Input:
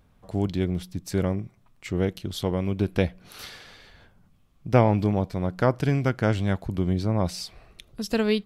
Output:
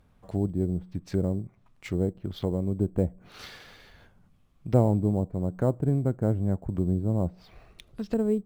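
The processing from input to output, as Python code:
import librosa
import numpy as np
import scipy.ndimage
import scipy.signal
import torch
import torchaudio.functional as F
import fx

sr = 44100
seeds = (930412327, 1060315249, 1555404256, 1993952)

p1 = fx.env_lowpass_down(x, sr, base_hz=570.0, full_db=-23.0)
p2 = fx.sample_hold(p1, sr, seeds[0], rate_hz=8100.0, jitter_pct=0)
p3 = p1 + F.gain(torch.from_numpy(p2), -11.0).numpy()
y = F.gain(torch.from_numpy(p3), -3.5).numpy()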